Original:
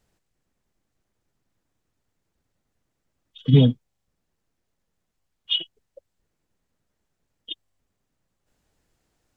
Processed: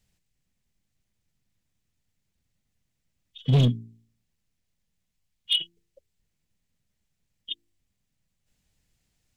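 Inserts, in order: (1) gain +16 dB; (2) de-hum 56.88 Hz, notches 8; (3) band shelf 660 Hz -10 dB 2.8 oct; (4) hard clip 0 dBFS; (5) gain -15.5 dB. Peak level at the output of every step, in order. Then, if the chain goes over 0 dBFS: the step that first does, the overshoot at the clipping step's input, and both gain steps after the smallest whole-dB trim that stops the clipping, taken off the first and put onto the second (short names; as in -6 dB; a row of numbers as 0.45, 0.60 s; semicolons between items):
+11.5, +11.5, +10.0, 0.0, -15.5 dBFS; step 1, 10.0 dB; step 1 +6 dB, step 5 -5.5 dB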